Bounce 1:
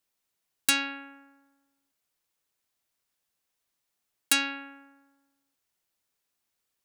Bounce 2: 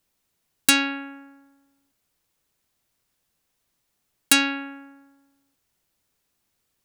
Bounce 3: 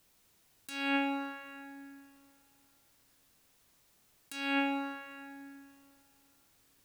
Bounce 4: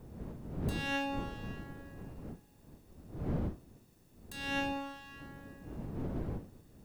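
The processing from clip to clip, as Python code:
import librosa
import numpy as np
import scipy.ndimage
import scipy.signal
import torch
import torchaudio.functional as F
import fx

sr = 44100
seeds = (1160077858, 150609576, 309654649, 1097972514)

y1 = fx.low_shelf(x, sr, hz=320.0, db=9.5)
y1 = y1 * librosa.db_to_amplitude(6.0)
y2 = fx.over_compress(y1, sr, threshold_db=-32.0, ratio=-1.0)
y2 = fx.rev_plate(y2, sr, seeds[0], rt60_s=2.6, hf_ratio=0.8, predelay_ms=0, drr_db=6.5)
y2 = y2 * librosa.db_to_amplitude(-1.5)
y3 = fx.lower_of_two(y2, sr, delay_ms=1.1)
y3 = fx.dmg_wind(y3, sr, seeds[1], corner_hz=240.0, level_db=-40.0)
y3 = y3 * librosa.db_to_amplitude(-2.0)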